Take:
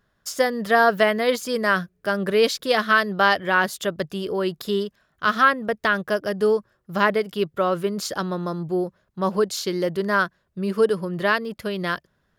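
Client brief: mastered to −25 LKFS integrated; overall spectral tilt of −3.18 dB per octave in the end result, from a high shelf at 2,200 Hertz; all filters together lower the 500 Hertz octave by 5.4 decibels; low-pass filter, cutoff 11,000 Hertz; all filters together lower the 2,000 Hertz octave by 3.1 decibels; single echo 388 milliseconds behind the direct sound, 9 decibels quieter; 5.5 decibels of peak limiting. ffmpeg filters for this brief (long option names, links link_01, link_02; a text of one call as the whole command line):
ffmpeg -i in.wav -af "lowpass=11000,equalizer=frequency=500:width_type=o:gain=-7,equalizer=frequency=2000:width_type=o:gain=-8,highshelf=frequency=2200:gain=8.5,alimiter=limit=-11dB:level=0:latency=1,aecho=1:1:388:0.355" out.wav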